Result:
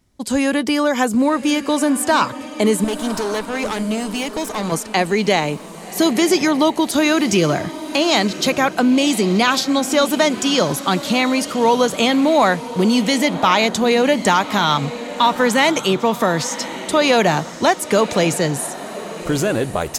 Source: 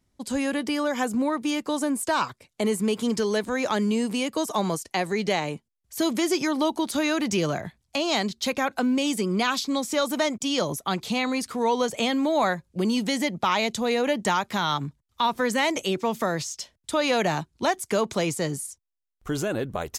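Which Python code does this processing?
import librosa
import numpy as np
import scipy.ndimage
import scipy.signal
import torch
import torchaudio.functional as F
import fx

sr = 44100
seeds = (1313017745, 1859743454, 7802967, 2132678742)

y = fx.tube_stage(x, sr, drive_db=27.0, bias=0.75, at=(2.84, 4.72))
y = fx.echo_diffused(y, sr, ms=1090, feedback_pct=40, wet_db=-13)
y = y * 10.0 ** (8.5 / 20.0)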